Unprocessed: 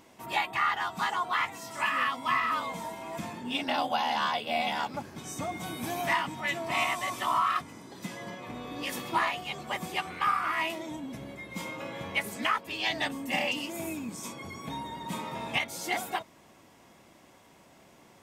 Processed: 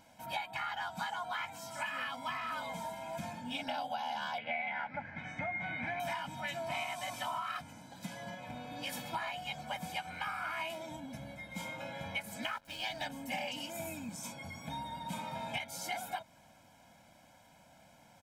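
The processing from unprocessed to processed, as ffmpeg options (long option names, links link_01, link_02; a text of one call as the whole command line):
ffmpeg -i in.wav -filter_complex "[0:a]asettb=1/sr,asplit=3[link_01][link_02][link_03];[link_01]atrim=end=4.384[link_04];[link_02]atrim=start=4.38:end=6,asetpts=PTS-STARTPTS,afade=type=in:duration=0.004:curve=qsin,afade=type=out:start_time=1.616:duration=0.004:curve=qsin,lowpass=frequency=2000:width_type=q:width=9.4[link_05];[link_03]atrim=start=5.996[link_06];[link_04][link_05]acrossfade=duration=0.004:curve1=hsin:curve2=qsin[link_07];[link_07][link_06]acrossfade=duration=0.004:curve1=qsin:curve2=hsin,asettb=1/sr,asplit=3[link_08][link_09][link_10];[link_08]atrim=end=12.444[link_11];[link_09]atrim=start=12.44:end=13.06,asetpts=PTS-STARTPTS,afade=type=in:duration=0.004:curve=qsin,afade=type=out:start_time=0.616:duration=0.004:curve=qsin,aeval=exprs='sgn(val(0))*max(abs(val(0))-0.00473,0)':channel_layout=same[link_12];[link_10]atrim=start=13.056[link_13];[link_11][link_12]acrossfade=duration=0.004:curve1=hsin:curve2=qsin[link_14];[link_14][link_13]acrossfade=duration=0.004:curve1=qsin:curve2=hsin,aecho=1:1:1.3:0.97,acompressor=threshold=-28dB:ratio=6,bandreject=frequency=60:width_type=h:width=6,bandreject=frequency=120:width_type=h:width=6,volume=-6.5dB" out.wav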